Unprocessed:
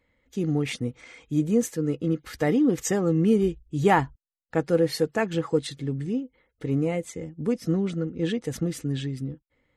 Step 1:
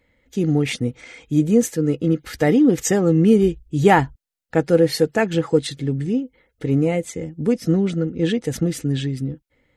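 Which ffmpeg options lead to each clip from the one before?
ffmpeg -i in.wav -af "equalizer=frequency=1100:width=4.5:gain=-6.5,volume=6.5dB" out.wav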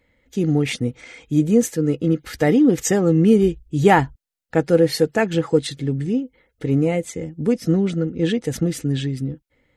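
ffmpeg -i in.wav -af anull out.wav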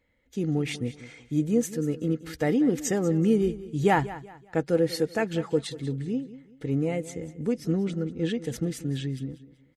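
ffmpeg -i in.wav -af "aecho=1:1:190|380|570:0.158|0.0523|0.0173,volume=-8dB" out.wav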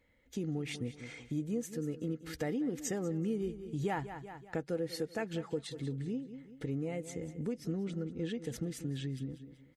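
ffmpeg -i in.wav -af "acompressor=threshold=-38dB:ratio=2.5" out.wav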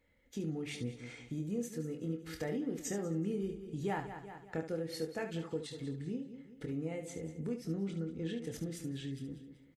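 ffmpeg -i in.wav -af "aecho=1:1:25|72:0.473|0.355,volume=-3dB" out.wav

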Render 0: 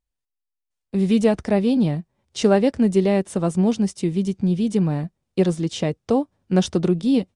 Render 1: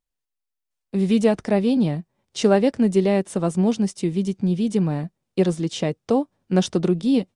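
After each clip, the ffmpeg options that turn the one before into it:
ffmpeg -i in.wav -af "equalizer=frequency=65:width_type=o:width=0.82:gain=-15" out.wav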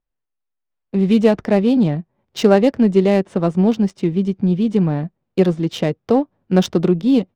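ffmpeg -i in.wav -af "adynamicsmooth=sensitivity=3.5:basefreq=2300,volume=4.5dB" out.wav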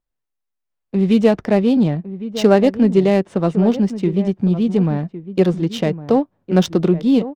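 ffmpeg -i in.wav -filter_complex "[0:a]asplit=2[link_01][link_02];[link_02]adelay=1108,volume=-13dB,highshelf=frequency=4000:gain=-24.9[link_03];[link_01][link_03]amix=inputs=2:normalize=0" out.wav

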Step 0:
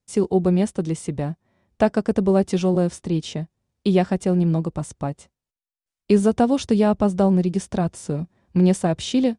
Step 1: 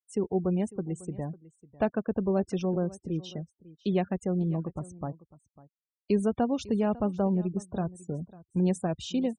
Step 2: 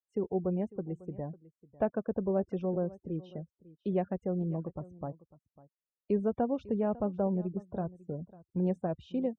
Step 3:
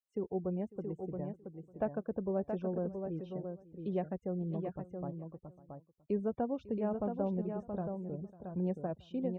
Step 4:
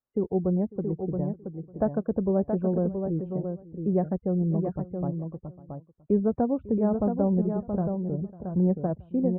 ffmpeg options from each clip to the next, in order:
ffmpeg -i in.wav -af "afftfilt=real='re*gte(hypot(re,im),0.0251)':imag='im*gte(hypot(re,im),0.0251)':win_size=1024:overlap=0.75,aecho=1:1:549:0.1,volume=-9dB" out.wav
ffmpeg -i in.wav -af "lowpass=1700,equalizer=frequency=540:width_type=o:width=0.69:gain=5,bandreject=frequency=1200:width=24,volume=-5dB" out.wav
ffmpeg -i in.wav -af "aecho=1:1:675:0.501,volume=-4.5dB" out.wav
ffmpeg -i in.wav -af "lowpass=frequency=1600:width=0.5412,lowpass=frequency=1600:width=1.3066,lowshelf=frequency=360:gain=8,volume=5.5dB" out.wav

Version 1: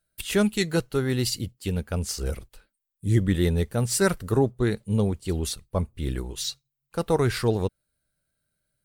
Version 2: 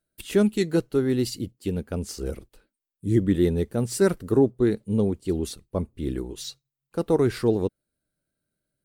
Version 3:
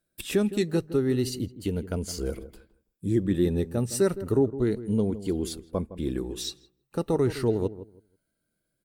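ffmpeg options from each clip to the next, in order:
ffmpeg -i in.wav -af "equalizer=frequency=310:width=0.85:gain=11.5,volume=-6dB" out.wav
ffmpeg -i in.wav -filter_complex "[0:a]afftfilt=real='re*pow(10,6/40*sin(2*PI*(1.8*log(max(b,1)*sr/1024/100)/log(2)-(0.33)*(pts-256)/sr)))':imag='im*pow(10,6/40*sin(2*PI*(1.8*log(max(b,1)*sr/1024/100)/log(2)-(0.33)*(pts-256)/sr)))':win_size=1024:overlap=0.75,acompressor=threshold=-34dB:ratio=1.5,asplit=2[link_01][link_02];[link_02]adelay=162,lowpass=frequency=890:poles=1,volume=-13dB,asplit=2[link_03][link_04];[link_04]adelay=162,lowpass=frequency=890:poles=1,volume=0.22,asplit=2[link_05][link_06];[link_06]adelay=162,lowpass=frequency=890:poles=1,volume=0.22[link_07];[link_01][link_03][link_05][link_07]amix=inputs=4:normalize=0,volume=2.5dB" out.wav

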